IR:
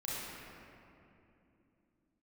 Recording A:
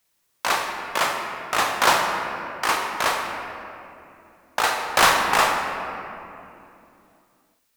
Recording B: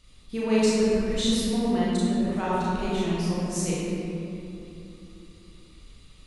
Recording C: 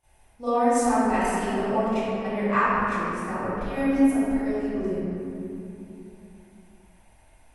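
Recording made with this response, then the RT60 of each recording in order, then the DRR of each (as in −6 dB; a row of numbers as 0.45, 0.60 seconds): B; 2.8, 2.8, 2.8 seconds; 1.5, −8.5, −18.0 decibels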